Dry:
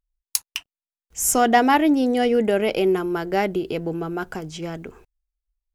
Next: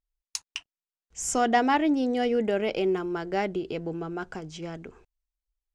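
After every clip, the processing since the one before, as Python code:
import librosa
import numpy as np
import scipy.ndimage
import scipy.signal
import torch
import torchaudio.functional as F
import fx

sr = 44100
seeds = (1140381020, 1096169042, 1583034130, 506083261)

y = scipy.signal.sosfilt(scipy.signal.butter(4, 8000.0, 'lowpass', fs=sr, output='sos'), x)
y = y * librosa.db_to_amplitude(-6.0)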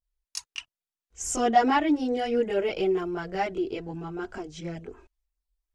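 y = fx.chorus_voices(x, sr, voices=4, hz=0.72, base_ms=22, depth_ms=1.6, mix_pct=70)
y = y * librosa.db_to_amplitude(1.5)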